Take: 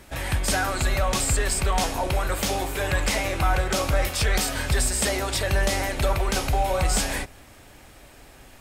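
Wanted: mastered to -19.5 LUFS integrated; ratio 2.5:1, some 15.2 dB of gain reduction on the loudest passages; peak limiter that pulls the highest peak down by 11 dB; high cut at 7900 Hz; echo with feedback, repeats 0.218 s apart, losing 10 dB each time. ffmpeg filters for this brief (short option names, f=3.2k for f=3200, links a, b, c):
-af "lowpass=7.9k,acompressor=threshold=-42dB:ratio=2.5,alimiter=level_in=11dB:limit=-24dB:level=0:latency=1,volume=-11dB,aecho=1:1:218|436|654|872:0.316|0.101|0.0324|0.0104,volume=24.5dB"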